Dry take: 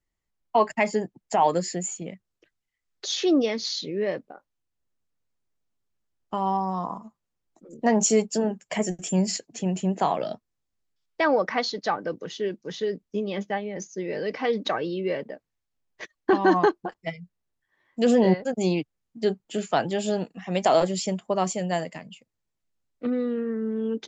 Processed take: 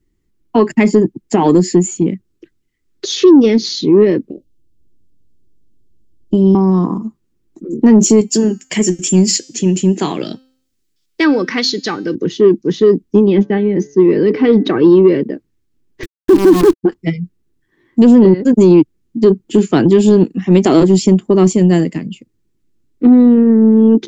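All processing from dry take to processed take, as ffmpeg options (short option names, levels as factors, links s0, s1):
-filter_complex "[0:a]asettb=1/sr,asplit=3[s0][s1][s2];[s0]atrim=end=4.304[s3];[s1]atrim=start=4.3:end=6.55,asetpts=PTS-STARTPTS,afade=t=in:d=0.004:c=qsin,afade=t=out:st=2.246:d=0.004:c=qsin,asuperstop=centerf=1300:order=12:qfactor=0.64,lowshelf=f=110:g=10[s4];[s2]atrim=start=6.546[s5];[s3][s4]acrossfade=d=0.004:c1=hsin:c2=qsin[s6];[s6][s5]acrossfade=d=0.004:c1=qsin:c2=hsin,asettb=1/sr,asplit=3[s7][s8][s9];[s7]atrim=end=8.214[s10];[s8]atrim=start=8.21:end=12.15,asetpts=PTS-STARTPTS,afade=t=in:d=0.004:c=qsin,afade=t=out:st=3.936:d=0.004:c=qsin,tiltshelf=f=1500:g=-8,bandreject=f=260.4:t=h:w=4,bandreject=f=520.8:t=h:w=4,bandreject=f=781.2:t=h:w=4,bandreject=f=1041.6:t=h:w=4,bandreject=f=1302:t=h:w=4,bandreject=f=1562.4:t=h:w=4,bandreject=f=1822.8:t=h:w=4,bandreject=f=2083.2:t=h:w=4,bandreject=f=2343.6:t=h:w=4,bandreject=f=2604:t=h:w=4,bandreject=f=2864.4:t=h:w=4,bandreject=f=3124.8:t=h:w=4,bandreject=f=3385.2:t=h:w=4,bandreject=f=3645.6:t=h:w=4,bandreject=f=3906:t=h:w=4,bandreject=f=4166.4:t=h:w=4,bandreject=f=4426.8:t=h:w=4,bandreject=f=4687.2:t=h:w=4,bandreject=f=4947.6:t=h:w=4,bandreject=f=5208:t=h:w=4,bandreject=f=5468.4:t=h:w=4,bandreject=f=5728.8:t=h:w=4,bandreject=f=5989.2:t=h:w=4,bandreject=f=6249.6:t=h:w=4,bandreject=f=6510:t=h:w=4,bandreject=f=6770.4:t=h:w=4,bandreject=f=7030.8:t=h:w=4,bandreject=f=7291.2:t=h:w=4,bandreject=f=7551.6:t=h:w=4,bandreject=f=7812:t=h:w=4,bandreject=f=8072.4:t=h:w=4,bandreject=f=8332.8:t=h:w=4,bandreject=f=8593.2:t=h:w=4,bandreject=f=8853.6:t=h:w=4,bandreject=f=9114:t=h:w=4,bandreject=f=9374.4:t=h:w=4,bandreject=f=9634.8:t=h:w=4,bandreject=f=9895.2:t=h:w=4,bandreject=f=10155.6:t=h:w=4,bandreject=f=10416:t=h:w=4[s11];[s9]atrim=start=12.146[s12];[s10][s11]acrossfade=d=0.004:c1=hsin:c2=qsin[s13];[s13][s12]acrossfade=d=0.004:c1=qsin:c2=hsin,asettb=1/sr,asplit=3[s14][s15][s16];[s14]atrim=end=13.254[s17];[s15]atrim=start=13.25:end=14.8,asetpts=PTS-STARTPTS,afade=t=in:d=0.004:c=qsin,afade=t=out:st=1.546:d=0.004:c=qsin,lowpass=4200,bandreject=f=142.5:t=h:w=4,bandreject=f=285:t=h:w=4,bandreject=f=427.5:t=h:w=4,bandreject=f=570:t=h:w=4,bandreject=f=712.5:t=h:w=4,bandreject=f=855:t=h:w=4,bandreject=f=997.5:t=h:w=4,bandreject=f=1140:t=h:w=4,bandreject=f=1282.5:t=h:w=4,bandreject=f=1425:t=h:w=4,bandreject=f=1567.5:t=h:w=4,bandreject=f=1710:t=h:w=4,bandreject=f=1852.5:t=h:w=4,bandreject=f=1995:t=h:w=4[s18];[s16]atrim=start=14.796[s19];[s17][s18]acrossfade=d=0.004:c1=hsin:c2=qsin[s20];[s20][s19]acrossfade=d=0.004:c1=qsin:c2=hsin,asettb=1/sr,asplit=3[s21][s22][s23];[s21]atrim=end=16.034[s24];[s22]atrim=start=16.03:end=16.83,asetpts=PTS-STARTPTS,afade=t=in:d=0.004:c=qsin,afade=t=out:st=0.796:d=0.004:c=qsin,highpass=190,acrusher=bits=5:dc=4:mix=0:aa=0.000001[s25];[s23]atrim=start=16.826[s26];[s24][s25]acrossfade=d=0.004:c1=hsin:c2=qsin[s27];[s27][s26]acrossfade=d=0.004:c1=qsin:c2=hsin,lowshelf=f=470:t=q:w=3:g=10.5,alimiter=limit=0.422:level=0:latency=1:release=91,acontrast=50,volume=1.33"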